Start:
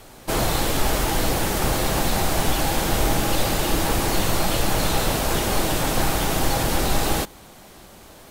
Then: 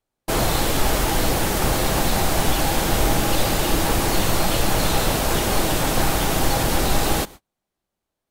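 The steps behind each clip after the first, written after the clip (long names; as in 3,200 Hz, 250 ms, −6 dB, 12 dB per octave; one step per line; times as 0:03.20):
noise gate −37 dBFS, range −39 dB
level +1.5 dB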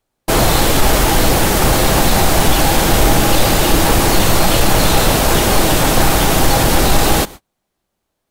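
soft clipping −8.5 dBFS, distortion −24 dB
level +8.5 dB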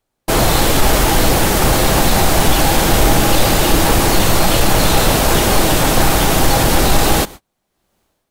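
automatic gain control gain up to 12.5 dB
level −1 dB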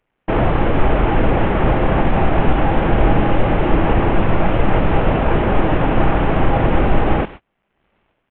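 variable-slope delta modulation 16 kbit/s
level +1 dB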